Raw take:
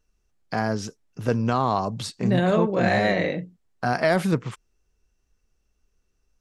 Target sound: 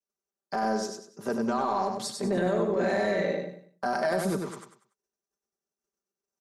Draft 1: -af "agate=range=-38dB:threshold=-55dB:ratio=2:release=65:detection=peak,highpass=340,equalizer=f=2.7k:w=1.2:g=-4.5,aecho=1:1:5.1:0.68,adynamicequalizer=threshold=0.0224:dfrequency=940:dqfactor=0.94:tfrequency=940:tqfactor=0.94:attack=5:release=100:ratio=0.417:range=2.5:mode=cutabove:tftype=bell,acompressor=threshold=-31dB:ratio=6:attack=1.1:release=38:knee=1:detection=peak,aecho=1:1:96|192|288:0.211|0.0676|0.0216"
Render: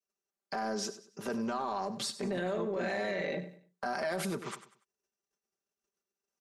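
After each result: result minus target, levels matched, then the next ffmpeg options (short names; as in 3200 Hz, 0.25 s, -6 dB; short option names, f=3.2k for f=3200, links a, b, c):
compressor: peak gain reduction +6.5 dB; echo-to-direct -9 dB; 2000 Hz band +2.5 dB
-af "agate=range=-38dB:threshold=-55dB:ratio=2:release=65:detection=peak,highpass=340,equalizer=f=2.7k:w=1.2:g=-4.5,aecho=1:1:5.1:0.68,adynamicequalizer=threshold=0.0224:dfrequency=940:dqfactor=0.94:tfrequency=940:tqfactor=0.94:attack=5:release=100:ratio=0.417:range=2.5:mode=cutabove:tftype=bell,acompressor=threshold=-23.5dB:ratio=6:attack=1.1:release=38:knee=1:detection=peak,aecho=1:1:96|192|288:0.211|0.0676|0.0216"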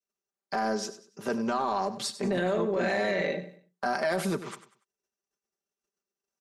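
echo-to-direct -9 dB; 2000 Hz band +2.5 dB
-af "agate=range=-38dB:threshold=-55dB:ratio=2:release=65:detection=peak,highpass=340,equalizer=f=2.7k:w=1.2:g=-4.5,aecho=1:1:5.1:0.68,adynamicequalizer=threshold=0.0224:dfrequency=940:dqfactor=0.94:tfrequency=940:tqfactor=0.94:attack=5:release=100:ratio=0.417:range=2.5:mode=cutabove:tftype=bell,acompressor=threshold=-23.5dB:ratio=6:attack=1.1:release=38:knee=1:detection=peak,aecho=1:1:96|192|288|384:0.596|0.191|0.061|0.0195"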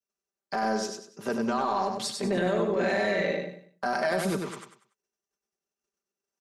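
2000 Hz band +3.0 dB
-af "agate=range=-38dB:threshold=-55dB:ratio=2:release=65:detection=peak,highpass=340,equalizer=f=2.7k:w=1.2:g=-13.5,aecho=1:1:5.1:0.68,adynamicequalizer=threshold=0.0224:dfrequency=940:dqfactor=0.94:tfrequency=940:tqfactor=0.94:attack=5:release=100:ratio=0.417:range=2.5:mode=cutabove:tftype=bell,acompressor=threshold=-23.5dB:ratio=6:attack=1.1:release=38:knee=1:detection=peak,aecho=1:1:96|192|288|384:0.596|0.191|0.061|0.0195"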